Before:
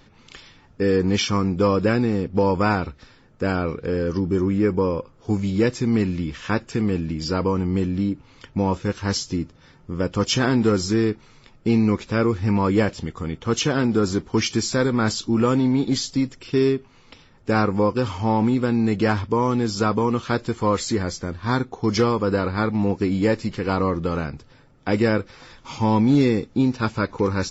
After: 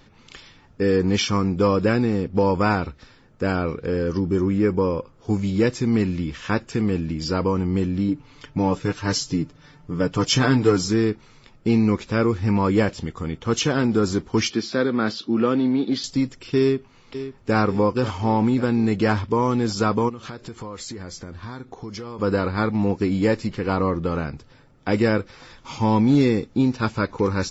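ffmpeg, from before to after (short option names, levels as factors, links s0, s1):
-filter_complex "[0:a]asettb=1/sr,asplit=3[s0][s1][s2];[s0]atrim=end=8.084[s3];[s1]atrim=start=8.08:end=10.88,asetpts=PTS-STARTPTS,afade=t=in:d=0.004:c=qsin,afade=t=out:st=2.796:d=0.004:c=qsin,aecho=1:1:6.8:0.65,atrim=end_sample=123480[s4];[s2]atrim=start=10.876[s5];[s3][s4]acrossfade=d=0.004:c1=hsin:c2=qsin[s6];[s6][s5]acrossfade=d=0.004:c1=qsin:c2=hsin,asettb=1/sr,asplit=3[s7][s8][s9];[s7]atrim=end=14.504[s10];[s8]atrim=start=14.5:end=16.04,asetpts=PTS-STARTPTS,afade=t=in:d=0.004:c=qsin,afade=t=out:st=1.536:d=0.004:c=qsin,highpass=f=140:w=0.5412,highpass=f=140:w=1.3066,equalizer=f=150:t=q:w=4:g=-9,equalizer=f=930:t=q:w=4:g=-6,equalizer=f=2200:t=q:w=4:g=-3,lowpass=f=4500:w=0.5412,lowpass=f=4500:w=1.3066[s11];[s9]atrim=start=16.036[s12];[s10][s11]acrossfade=d=0.004:c1=hsin:c2=qsin[s13];[s13][s12]acrossfade=d=0.004:c1=qsin:c2=hsin,asplit=2[s14][s15];[s15]afade=t=in:st=16.6:d=0.01,afade=t=out:st=17.56:d=0.01,aecho=0:1:540|1080|1620|2160|2700|3240|3780|4320:0.266073|0.172947|0.112416|0.0730702|0.0474956|0.0308721|0.0200669|0.0130435[s16];[s14][s16]amix=inputs=2:normalize=0,asplit=3[s17][s18][s19];[s17]afade=t=out:st=20.08:d=0.02[s20];[s18]acompressor=threshold=0.0282:ratio=8:attack=3.2:release=140:knee=1:detection=peak,afade=t=in:st=20.08:d=0.02,afade=t=out:st=22.18:d=0.02[s21];[s19]afade=t=in:st=22.18:d=0.02[s22];[s20][s21][s22]amix=inputs=3:normalize=0,asettb=1/sr,asplit=3[s23][s24][s25];[s23]atrim=end=23.474[s26];[s24]atrim=start=23.47:end=24.27,asetpts=PTS-STARTPTS,afade=t=in:d=0.004:c=qsin,afade=t=out:st=0.796:d=0.004:c=qsin,highshelf=f=4100:g=-5.5[s27];[s25]atrim=start=24.266[s28];[s26][s27]acrossfade=d=0.004:c1=hsin:c2=qsin[s29];[s29][s28]acrossfade=d=0.004:c1=qsin:c2=hsin"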